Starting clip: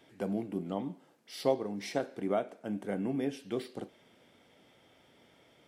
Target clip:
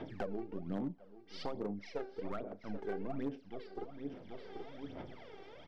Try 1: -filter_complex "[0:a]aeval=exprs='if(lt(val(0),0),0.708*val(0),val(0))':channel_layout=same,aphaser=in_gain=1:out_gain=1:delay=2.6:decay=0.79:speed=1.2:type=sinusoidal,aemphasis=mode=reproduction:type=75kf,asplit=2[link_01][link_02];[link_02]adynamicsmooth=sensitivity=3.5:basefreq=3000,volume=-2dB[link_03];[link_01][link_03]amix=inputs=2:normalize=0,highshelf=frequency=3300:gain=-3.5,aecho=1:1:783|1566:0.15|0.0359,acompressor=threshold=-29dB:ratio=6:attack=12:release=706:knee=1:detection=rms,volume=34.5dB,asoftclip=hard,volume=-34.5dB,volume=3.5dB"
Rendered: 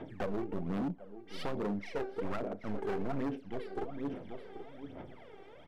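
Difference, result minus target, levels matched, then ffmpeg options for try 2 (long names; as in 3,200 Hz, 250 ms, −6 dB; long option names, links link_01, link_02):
downward compressor: peak gain reduction −8 dB; 4,000 Hz band −2.5 dB
-filter_complex "[0:a]aeval=exprs='if(lt(val(0),0),0.708*val(0),val(0))':channel_layout=same,aphaser=in_gain=1:out_gain=1:delay=2.6:decay=0.79:speed=1.2:type=sinusoidal,aemphasis=mode=reproduction:type=75kf,asplit=2[link_01][link_02];[link_02]adynamicsmooth=sensitivity=3.5:basefreq=3000,volume=-2dB[link_03];[link_01][link_03]amix=inputs=2:normalize=0,lowpass=frequency=5100:width_type=q:width=3,highshelf=frequency=3300:gain=-3.5,aecho=1:1:783|1566:0.15|0.0359,acompressor=threshold=-38.5dB:ratio=6:attack=12:release=706:knee=1:detection=rms,volume=34.5dB,asoftclip=hard,volume=-34.5dB,volume=3.5dB"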